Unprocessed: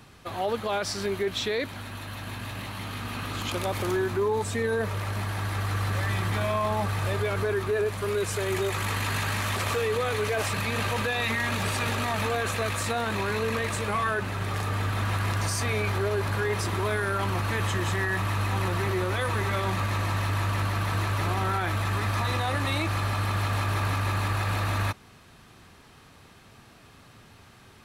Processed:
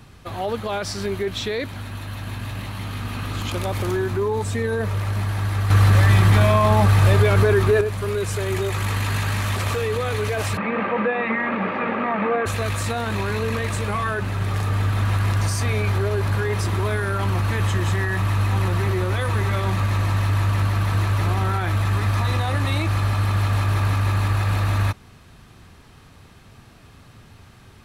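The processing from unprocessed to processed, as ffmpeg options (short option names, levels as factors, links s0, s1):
-filter_complex "[0:a]asettb=1/sr,asplit=3[s0][s1][s2];[s0]atrim=end=5.704[s3];[s1]atrim=start=5.7:end=7.81,asetpts=PTS-STARTPTS,afade=t=in:d=0.004:c=qsin,afade=t=out:st=2.106:d=0.004:c=qsin,acontrast=69[s4];[s2]atrim=start=7.806[s5];[s3][s4]acrossfade=d=0.004:c1=hsin:c2=qsin[s6];[s6][s5]acrossfade=d=0.004:c1=qsin:c2=hsin,asplit=3[s7][s8][s9];[s7]afade=t=out:st=10.56:d=0.02[s10];[s8]highpass=f=200:w=0.5412,highpass=f=200:w=1.3066,equalizer=f=200:t=q:w=4:g=10,equalizer=f=330:t=q:w=4:g=5,equalizer=f=520:t=q:w=4:g=8,equalizer=f=810:t=q:w=4:g=4,equalizer=f=1200:t=q:w=4:g=5,equalizer=f=2100:t=q:w=4:g=4,lowpass=f=2400:w=0.5412,lowpass=f=2400:w=1.3066,afade=t=in:st=10.56:d=0.02,afade=t=out:st=12.45:d=0.02[s11];[s9]afade=t=in:st=12.45:d=0.02[s12];[s10][s11][s12]amix=inputs=3:normalize=0,lowshelf=f=150:g=9.5,volume=1.19"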